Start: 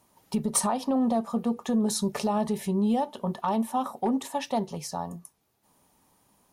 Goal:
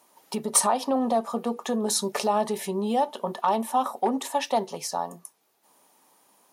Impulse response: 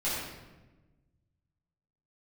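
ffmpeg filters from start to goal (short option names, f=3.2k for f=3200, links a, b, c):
-af "highpass=360,volume=5dB"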